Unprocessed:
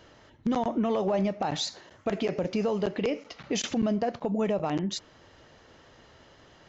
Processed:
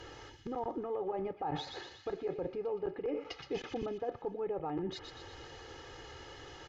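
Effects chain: low-pass that closes with the level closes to 1.3 kHz, closed at -27 dBFS; comb 2.4 ms, depth 80%; reverse; compression 6:1, threshold -38 dBFS, peak gain reduction 16.5 dB; reverse; feedback echo behind a high-pass 120 ms, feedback 55%, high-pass 2.4 kHz, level -5 dB; trim +3 dB

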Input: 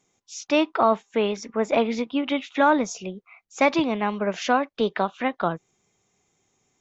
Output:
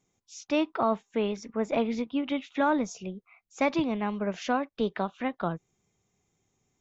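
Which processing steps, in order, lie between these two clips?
bass shelf 220 Hz +10.5 dB; trim -8 dB

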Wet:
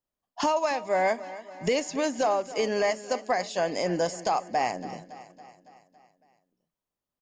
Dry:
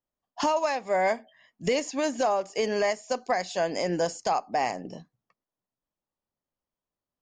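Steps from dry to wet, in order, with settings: feedback delay 279 ms, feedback 58%, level -16 dB

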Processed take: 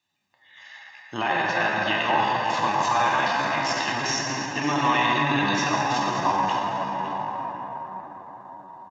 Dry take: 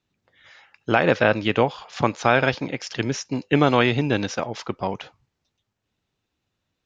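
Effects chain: peak limiter -12 dBFS, peak gain reduction 9.5 dB; dynamic bell 1 kHz, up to +6 dB, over -45 dBFS, Q 3.8; comb 1.1 ms, depth 68%; delay 433 ms -12 dB; plate-style reverb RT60 4.7 s, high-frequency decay 0.35×, DRR -5.5 dB; tempo 0.77×; high-pass 790 Hz 6 dB/octave

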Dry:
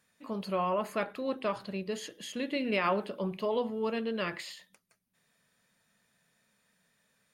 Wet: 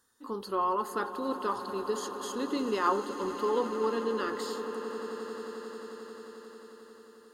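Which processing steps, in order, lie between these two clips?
static phaser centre 630 Hz, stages 6; echo with a slow build-up 89 ms, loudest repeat 8, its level -17 dB; trim +4.5 dB

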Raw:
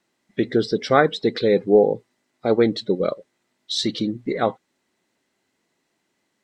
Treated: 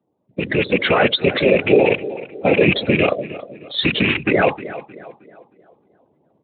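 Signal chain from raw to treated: rattle on loud lows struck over -31 dBFS, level -12 dBFS; 2.93–3.81 s: bass shelf 180 Hz +7 dB; level-controlled noise filter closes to 600 Hz, open at -13.5 dBFS; peaking EQ 290 Hz -8.5 dB 0.6 oct; compression 8:1, threshold -22 dBFS, peak gain reduction 12 dB; peak limiter -22.5 dBFS, peak gain reduction 10.5 dB; whisper effect; tape echo 312 ms, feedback 46%, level -13.5 dB, low-pass 2.5 kHz; level rider gain up to 10.5 dB; spectral gate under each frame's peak -20 dB strong; trim +8 dB; Speex 18 kbps 8 kHz

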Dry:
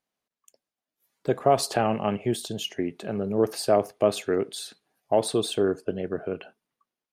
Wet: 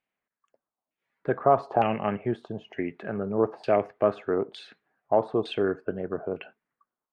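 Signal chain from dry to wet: LFO low-pass saw down 1.1 Hz 870–2600 Hz; trim -2.5 dB

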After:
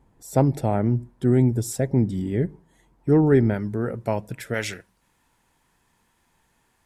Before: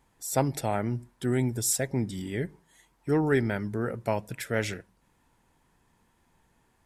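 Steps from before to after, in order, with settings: tilt shelf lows +8 dB, from 3.53 s lows +3.5 dB, from 4.53 s lows -3.5 dB; trim +1.5 dB

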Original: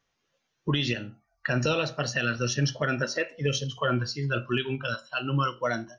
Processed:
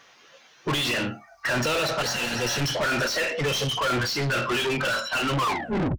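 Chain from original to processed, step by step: tape stop on the ending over 0.61 s; overdrive pedal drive 37 dB, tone 4.1 kHz, clips at -13.5 dBFS; spectral replace 2.05–2.58 s, 530–2000 Hz after; trim -4.5 dB

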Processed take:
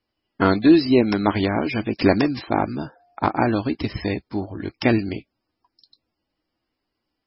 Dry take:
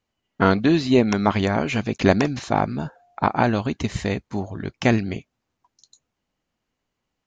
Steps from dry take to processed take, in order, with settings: graphic EQ with 31 bands 160 Hz -6 dB, 315 Hz +9 dB, 5 kHz +9 dB; trim -1 dB; MP3 16 kbps 22.05 kHz

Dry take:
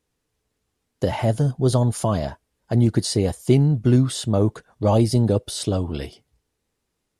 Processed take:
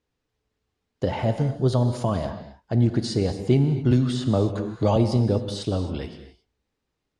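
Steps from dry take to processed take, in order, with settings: low-pass 5.1 kHz 12 dB/octave; gated-style reverb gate 290 ms flat, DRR 8 dB; 3.91–4.96 s: three bands compressed up and down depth 70%; trim -3 dB

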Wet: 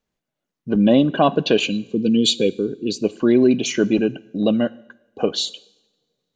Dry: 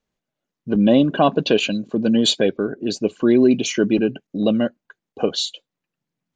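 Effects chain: time-frequency box 1.66–3.03 s, 520–2100 Hz -17 dB; two-slope reverb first 0.84 s, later 2.9 s, from -27 dB, DRR 18 dB

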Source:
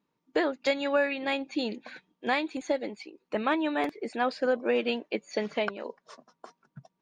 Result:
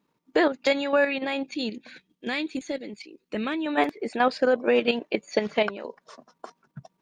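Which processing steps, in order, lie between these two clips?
1.46–3.66 s: peaking EQ 860 Hz -12.5 dB 1.6 oct; level held to a coarse grid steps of 9 dB; trim +8 dB

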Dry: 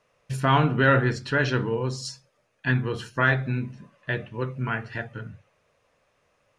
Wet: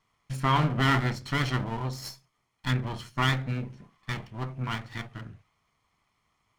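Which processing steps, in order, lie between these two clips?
comb filter that takes the minimum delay 0.94 ms; trim -3.5 dB

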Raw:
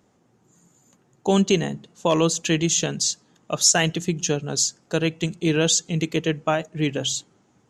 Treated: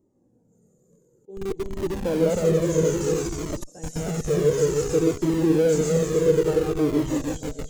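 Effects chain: backward echo that repeats 157 ms, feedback 65%, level -0.5 dB; on a send: feedback echo behind a high-pass 91 ms, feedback 41%, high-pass 1.5 kHz, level -4.5 dB; on the sum: slow attack 756 ms; FFT filter 130 Hz 0 dB, 190 Hz +1 dB, 320 Hz +5 dB, 470 Hz +10 dB, 680 Hz -8 dB, 3 kHz -25 dB, 8.4 kHz -7 dB, 12 kHz -5 dB; in parallel at -9 dB: Schmitt trigger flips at -23.5 dBFS; on the sum: Shepard-style flanger falling 0.57 Hz; trim -1.5 dB

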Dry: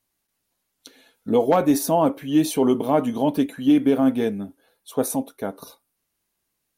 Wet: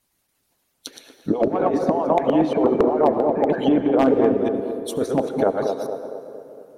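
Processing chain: chunks repeated in reverse 115 ms, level -7 dB; 2.53–3.50 s: rippled Chebyshev low-pass 2.4 kHz, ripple 3 dB; 4.14–5.18 s: peaking EQ 760 Hz -14 dB 1.1 oct; harmonic-percussive split harmonic -15 dB; dynamic bell 560 Hz, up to +7 dB, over -36 dBFS, Q 0.75; in parallel at +2 dB: peak limiter -13 dBFS, peak gain reduction 9 dB; on the sum: compressor with a negative ratio -17 dBFS, ratio -0.5; low-pass that closes with the level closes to 1.2 kHz, closed at -14.5 dBFS; wavefolder -7.5 dBFS; band-passed feedback delay 229 ms, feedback 57%, band-pass 470 Hz, level -4.5 dB; on a send at -12 dB: reverberation RT60 3.2 s, pre-delay 62 ms

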